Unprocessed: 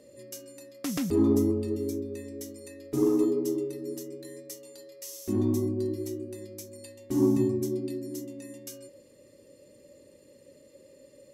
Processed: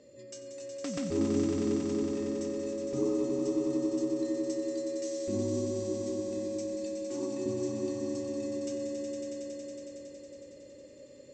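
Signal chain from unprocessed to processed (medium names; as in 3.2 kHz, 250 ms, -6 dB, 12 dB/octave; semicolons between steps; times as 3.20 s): 6.73–7.46 s: high-pass 770 Hz 6 dB/octave; in parallel at -1 dB: compression, threshold -38 dBFS, peak gain reduction 17.5 dB; on the sum: brick-wall FIR low-pass 8.5 kHz; echo with a slow build-up 92 ms, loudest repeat 5, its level -6.5 dB; trim -8 dB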